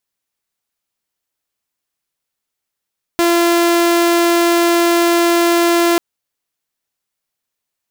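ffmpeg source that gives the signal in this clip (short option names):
-f lavfi -i "aevalsrc='0.398*(2*mod(342*t,1)-1)':d=2.79:s=44100"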